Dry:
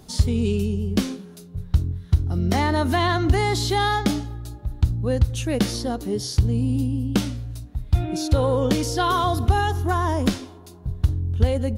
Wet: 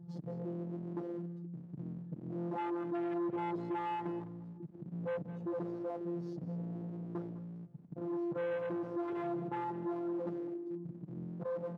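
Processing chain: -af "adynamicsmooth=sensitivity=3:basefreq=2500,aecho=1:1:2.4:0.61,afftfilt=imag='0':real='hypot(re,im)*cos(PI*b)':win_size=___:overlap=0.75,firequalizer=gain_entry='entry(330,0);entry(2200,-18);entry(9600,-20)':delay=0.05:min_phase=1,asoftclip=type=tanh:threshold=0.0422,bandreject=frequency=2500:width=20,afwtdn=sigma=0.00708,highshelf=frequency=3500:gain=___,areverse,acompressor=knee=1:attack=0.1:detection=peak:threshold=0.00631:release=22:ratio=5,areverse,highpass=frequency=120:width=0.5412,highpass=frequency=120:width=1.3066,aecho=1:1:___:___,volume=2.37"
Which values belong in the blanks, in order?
1024, 2.5, 206, 0.178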